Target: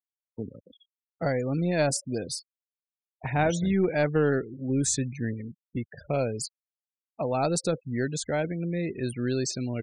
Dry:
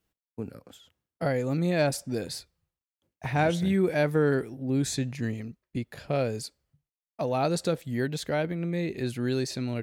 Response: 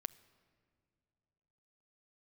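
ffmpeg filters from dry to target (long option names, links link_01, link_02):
-filter_complex "[0:a]aeval=exprs='0.237*(cos(1*acos(clip(val(0)/0.237,-1,1)))-cos(1*PI/2))+0.00237*(cos(4*acos(clip(val(0)/0.237,-1,1)))-cos(4*PI/2))+0.0168*(cos(6*acos(clip(val(0)/0.237,-1,1)))-cos(6*PI/2))+0.00944*(cos(8*acos(clip(val(0)/0.237,-1,1)))-cos(8*PI/2))':channel_layout=same,afftfilt=real='re*gte(hypot(re,im),0.0141)':imag='im*gte(hypot(re,im),0.0141)':win_size=1024:overlap=0.75,acrossover=split=6500[link_01][link_02];[link_02]acompressor=threshold=-54dB:ratio=4:attack=1:release=60[link_03];[link_01][link_03]amix=inputs=2:normalize=0,aexciter=amount=6.7:drive=5.3:freq=5900,aresample=22050,aresample=44100"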